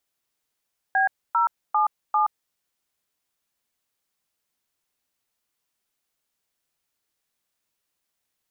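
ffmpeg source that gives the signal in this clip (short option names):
-f lavfi -i "aevalsrc='0.1*clip(min(mod(t,0.397),0.124-mod(t,0.397))/0.002,0,1)*(eq(floor(t/0.397),0)*(sin(2*PI*770*mod(t,0.397))+sin(2*PI*1633*mod(t,0.397)))+eq(floor(t/0.397),1)*(sin(2*PI*941*mod(t,0.397))+sin(2*PI*1336*mod(t,0.397)))+eq(floor(t/0.397),2)*(sin(2*PI*852*mod(t,0.397))+sin(2*PI*1209*mod(t,0.397)))+eq(floor(t/0.397),3)*(sin(2*PI*852*mod(t,0.397))+sin(2*PI*1209*mod(t,0.397))))':d=1.588:s=44100"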